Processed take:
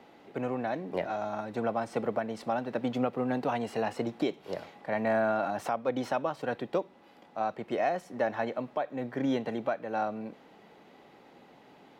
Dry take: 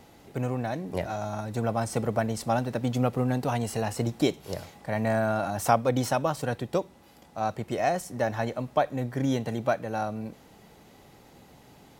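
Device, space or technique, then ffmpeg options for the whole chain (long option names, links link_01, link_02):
DJ mixer with the lows and highs turned down: -filter_complex "[0:a]acrossover=split=190 3900:gain=0.1 1 0.126[link_01][link_02][link_03];[link_01][link_02][link_03]amix=inputs=3:normalize=0,alimiter=limit=-18.5dB:level=0:latency=1:release=282"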